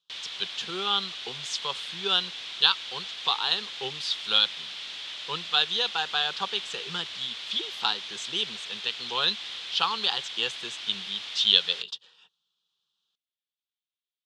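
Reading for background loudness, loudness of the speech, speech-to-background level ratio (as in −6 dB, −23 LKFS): −35.5 LKFS, −27.0 LKFS, 8.5 dB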